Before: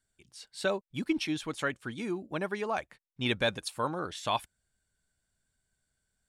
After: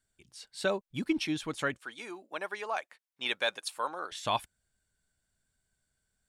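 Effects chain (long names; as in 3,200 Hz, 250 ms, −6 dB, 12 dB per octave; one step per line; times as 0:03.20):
0:01.78–0:04.12: high-pass filter 610 Hz 12 dB per octave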